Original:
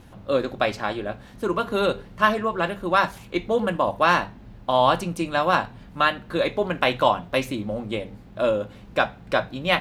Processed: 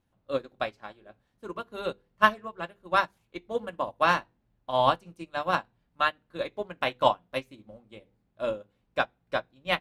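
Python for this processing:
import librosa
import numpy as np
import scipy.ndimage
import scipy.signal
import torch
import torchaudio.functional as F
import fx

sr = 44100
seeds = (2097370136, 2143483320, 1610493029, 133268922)

y = fx.hum_notches(x, sr, base_hz=50, count=10)
y = fx.upward_expand(y, sr, threshold_db=-32.0, expansion=2.5)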